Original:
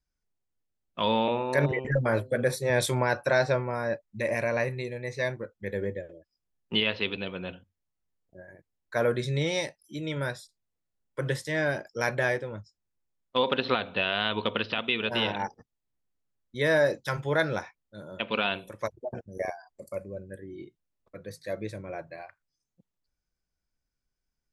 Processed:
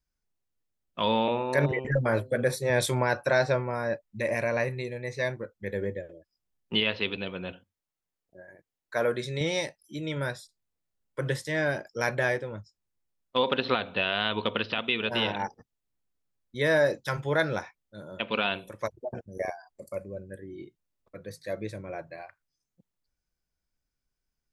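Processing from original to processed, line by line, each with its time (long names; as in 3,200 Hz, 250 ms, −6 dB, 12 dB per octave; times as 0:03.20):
0:07.52–0:09.41: low-shelf EQ 160 Hz −11 dB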